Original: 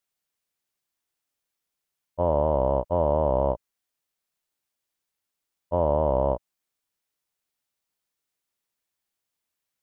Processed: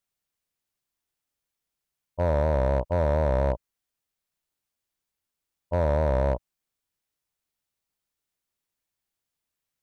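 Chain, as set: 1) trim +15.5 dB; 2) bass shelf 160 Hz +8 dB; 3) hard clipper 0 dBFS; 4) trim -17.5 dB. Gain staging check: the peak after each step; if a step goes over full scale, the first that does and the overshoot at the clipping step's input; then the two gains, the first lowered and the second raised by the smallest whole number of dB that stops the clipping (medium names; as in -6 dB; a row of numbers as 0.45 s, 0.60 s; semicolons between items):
+5.0 dBFS, +5.5 dBFS, 0.0 dBFS, -17.5 dBFS; step 1, 5.5 dB; step 1 +9.5 dB, step 4 -11.5 dB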